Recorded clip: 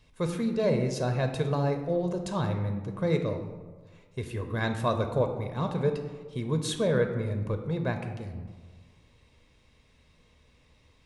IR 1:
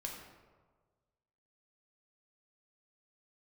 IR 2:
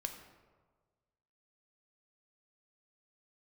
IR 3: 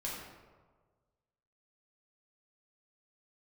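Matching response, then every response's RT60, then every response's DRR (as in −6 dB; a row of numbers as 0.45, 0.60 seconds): 2; 1.5, 1.5, 1.5 seconds; −0.5, 5.0, −5.0 decibels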